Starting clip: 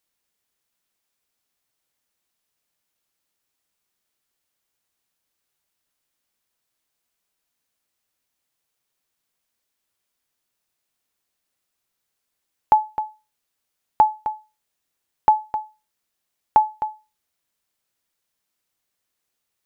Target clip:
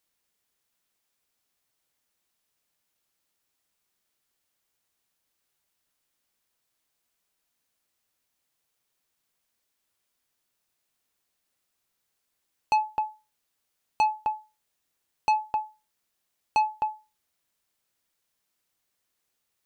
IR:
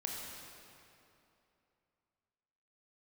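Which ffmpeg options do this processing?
-af "asoftclip=type=tanh:threshold=-18.5dB"

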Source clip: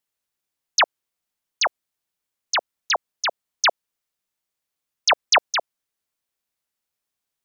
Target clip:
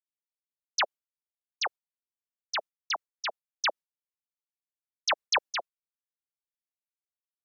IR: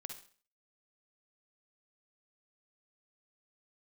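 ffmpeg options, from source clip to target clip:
-af "agate=range=-33dB:threshold=-28dB:ratio=3:detection=peak,flanger=delay=0.7:depth=5.1:regen=-9:speed=1.7:shape=triangular,volume=-6dB"

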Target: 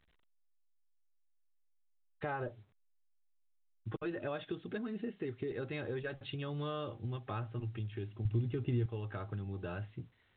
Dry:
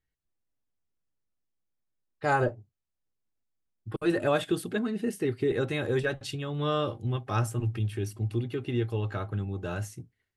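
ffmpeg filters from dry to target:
ffmpeg -i in.wav -filter_complex "[0:a]acompressor=threshold=-41dB:ratio=4,asettb=1/sr,asplit=3[link_01][link_02][link_03];[link_01]atrim=end=8.254[link_04];[link_02]atrim=start=8.25:end=8.86,asetpts=PTS-STARTPTS,afade=type=in:duration=0.004:curve=qsin,afade=type=out:start_time=0.606:duration=0.004:curve=qsin,aemphasis=mode=reproduction:type=bsi[link_05];[link_03]atrim=start=8.856[link_06];[link_04][link_05]acrossfade=duration=0.004:curve1=hsin:curve2=qsin[link_07];[link_07][link_06]acrossfade=duration=0.004:curve1=qsin:curve2=hsin,volume=2dB" -ar 8000 -c:a pcm_alaw out.wav

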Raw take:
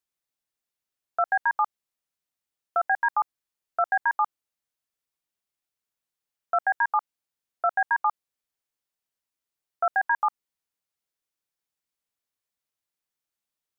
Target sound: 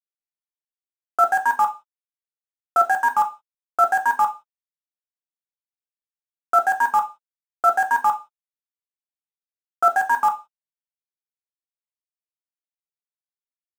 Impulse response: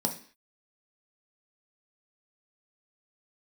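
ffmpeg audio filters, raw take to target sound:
-filter_complex "[0:a]aeval=exprs='val(0)*gte(abs(val(0)),0.0299)':channel_layout=same[link_01];[1:a]atrim=start_sample=2205,asetrate=66150,aresample=44100[link_02];[link_01][link_02]afir=irnorm=-1:irlink=0"

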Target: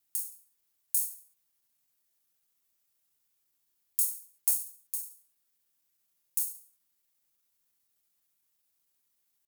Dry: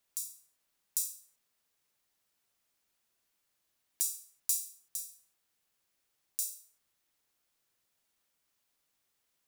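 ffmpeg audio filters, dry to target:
ffmpeg -i in.wav -filter_complex "[0:a]aemphasis=mode=production:type=50kf,asetrate=53981,aresample=44100,atempo=0.816958,afreqshift=-380,asplit=2[link_01][link_02];[link_02]acrusher=bits=4:mode=log:mix=0:aa=0.000001,volume=-8.5dB[link_03];[link_01][link_03]amix=inputs=2:normalize=0,volume=-8.5dB" out.wav

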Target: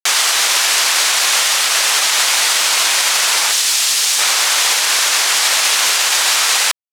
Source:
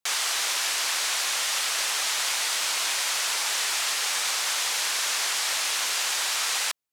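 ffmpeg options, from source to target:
ffmpeg -i in.wav -filter_complex "[0:a]asettb=1/sr,asplit=3[link_01][link_02][link_03];[link_01]atrim=end=3.514[link_04];[link_02]atrim=start=3.51:end=4.19,asetpts=PTS-STARTPTS,afade=type=in:duration=0.004:curve=qsin,afade=type=out:start_time=0.676:duration=0.004:curve=qsin,acrossover=split=220|3000[link_05][link_06][link_07];[link_06]acompressor=threshold=-40dB:ratio=6[link_08];[link_05][link_08][link_07]amix=inputs=3:normalize=0[link_09];[link_03]atrim=start=4.186[link_10];[link_04][link_09]acrossfade=duration=0.004:curve1=hsin:curve2=qsin[link_11];[link_11][link_10]acrossfade=duration=0.004:curve1=qsin:curve2=hsin,aeval=exprs='sgn(val(0))*max(abs(val(0))-0.00168,0)':channel_layout=same,alimiter=level_in=17.5dB:limit=-1dB:release=50:level=0:latency=1,volume=-3dB" out.wav

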